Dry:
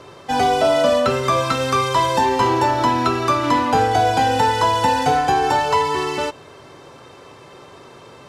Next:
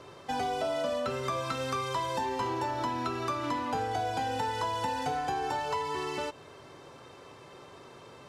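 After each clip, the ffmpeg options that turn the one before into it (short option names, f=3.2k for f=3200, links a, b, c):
-af "acompressor=threshold=-24dB:ratio=2.5,volume=-8dB"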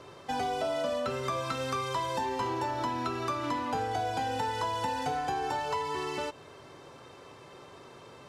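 -af anull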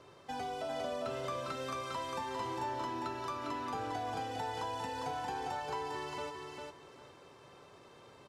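-af "aecho=1:1:402|804|1206:0.631|0.139|0.0305,volume=-8dB"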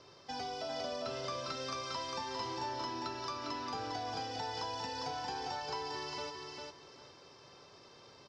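-af "lowpass=f=5.2k:t=q:w=5.9,volume=-2dB"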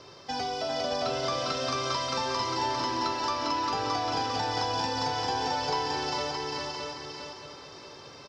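-af "aecho=1:1:619|1238|1857|2476:0.631|0.177|0.0495|0.0139,volume=8.5dB"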